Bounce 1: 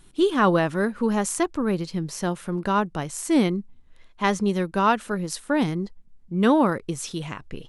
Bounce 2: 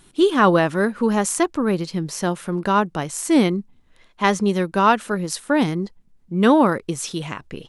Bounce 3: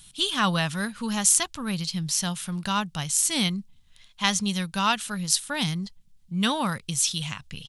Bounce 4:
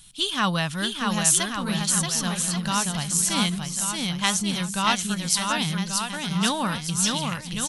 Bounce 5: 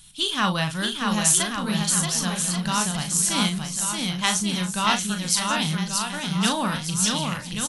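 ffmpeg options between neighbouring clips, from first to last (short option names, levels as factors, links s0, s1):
-af "lowshelf=f=79:g=-10.5,volume=1.68"
-af "firequalizer=gain_entry='entry(150,0);entry(340,-21);entry(740,-9);entry(2000,-3);entry(3200,7)':delay=0.05:min_phase=1,volume=0.891"
-af "aecho=1:1:630|1134|1537|1860|2118:0.631|0.398|0.251|0.158|0.1"
-filter_complex "[0:a]asplit=2[s0][s1];[s1]adelay=38,volume=0.447[s2];[s0][s2]amix=inputs=2:normalize=0"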